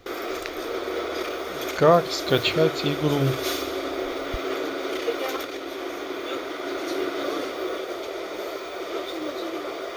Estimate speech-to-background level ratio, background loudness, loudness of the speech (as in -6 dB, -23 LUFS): 7.5 dB, -29.5 LUFS, -22.0 LUFS